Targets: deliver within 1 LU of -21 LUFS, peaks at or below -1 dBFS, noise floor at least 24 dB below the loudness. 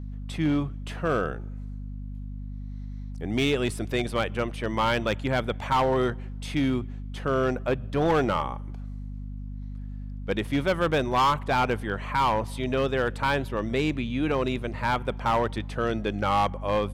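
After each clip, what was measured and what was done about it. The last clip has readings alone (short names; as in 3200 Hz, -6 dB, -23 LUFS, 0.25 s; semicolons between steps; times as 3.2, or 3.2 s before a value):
clipped 1.2%; flat tops at -17.5 dBFS; hum 50 Hz; harmonics up to 250 Hz; hum level -33 dBFS; loudness -26.5 LUFS; peak -17.5 dBFS; loudness target -21.0 LUFS
-> clip repair -17.5 dBFS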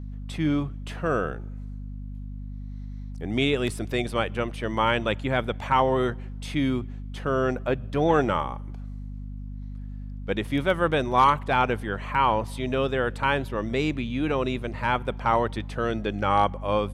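clipped 0.0%; hum 50 Hz; harmonics up to 250 Hz; hum level -33 dBFS
-> notches 50/100/150/200/250 Hz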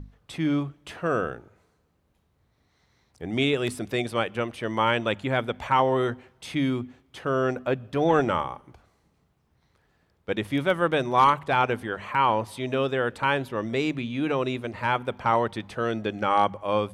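hum none; loudness -26.0 LUFS; peak -7.5 dBFS; loudness target -21.0 LUFS
-> gain +5 dB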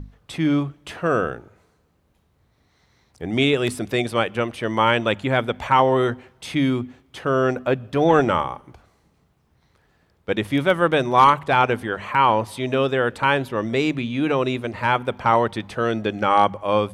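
loudness -21.0 LUFS; peak -2.5 dBFS; noise floor -64 dBFS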